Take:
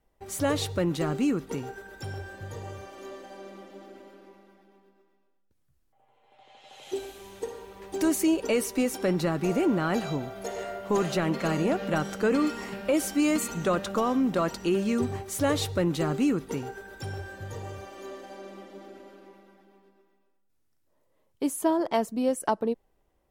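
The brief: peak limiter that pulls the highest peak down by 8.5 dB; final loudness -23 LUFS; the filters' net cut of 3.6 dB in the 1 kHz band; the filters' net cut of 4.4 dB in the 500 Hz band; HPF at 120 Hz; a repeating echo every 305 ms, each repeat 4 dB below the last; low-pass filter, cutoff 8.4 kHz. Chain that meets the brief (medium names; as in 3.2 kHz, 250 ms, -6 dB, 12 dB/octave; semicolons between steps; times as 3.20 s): high-pass 120 Hz; low-pass 8.4 kHz; peaking EQ 500 Hz -5 dB; peaking EQ 1 kHz -3 dB; peak limiter -23.5 dBFS; feedback delay 305 ms, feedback 63%, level -4 dB; trim +9.5 dB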